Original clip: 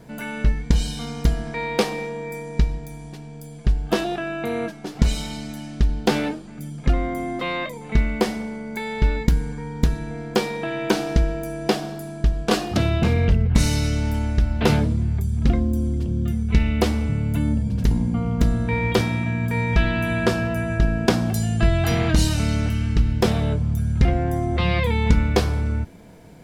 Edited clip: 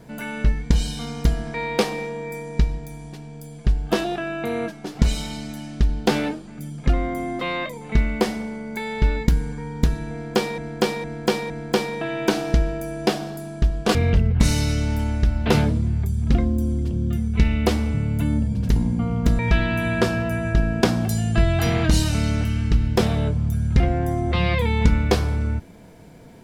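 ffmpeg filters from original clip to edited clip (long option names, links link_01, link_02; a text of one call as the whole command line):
ffmpeg -i in.wav -filter_complex "[0:a]asplit=6[link_01][link_02][link_03][link_04][link_05][link_06];[link_01]atrim=end=10.582[link_07];[link_02]atrim=start=10.118:end=10.582[link_08];[link_03]atrim=start=10.118:end=10.582[link_09];[link_04]atrim=start=10.118:end=12.572[link_10];[link_05]atrim=start=13.098:end=18.542[link_11];[link_06]atrim=start=19.638[link_12];[link_07][link_08]acrossfade=duration=0.004:curve1=hsin:curve2=hsin[link_13];[link_13][link_09]acrossfade=duration=0.004:curve1=hsin:curve2=hsin[link_14];[link_14][link_10]acrossfade=duration=0.004:curve1=hsin:curve2=hsin[link_15];[link_15][link_11]acrossfade=duration=0.004:curve1=hsin:curve2=hsin[link_16];[link_16][link_12]acrossfade=duration=0.004:curve1=hsin:curve2=hsin" out.wav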